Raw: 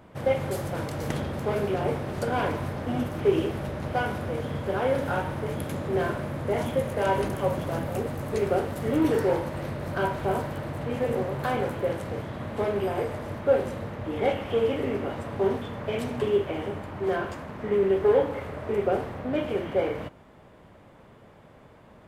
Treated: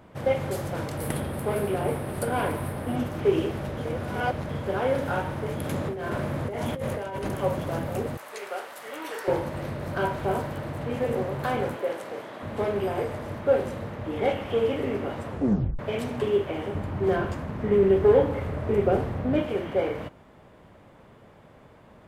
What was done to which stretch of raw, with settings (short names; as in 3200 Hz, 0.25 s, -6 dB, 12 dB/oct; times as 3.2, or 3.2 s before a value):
0.97–2.96 resonant high shelf 7900 Hz +7 dB, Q 3
3.77–4.49 reverse
5.64–7.27 negative-ratio compressor -30 dBFS
8.17–9.28 HPF 930 Hz
11.76–12.43 HPF 360 Hz
15.28 tape stop 0.51 s
16.75–19.42 low shelf 240 Hz +10.5 dB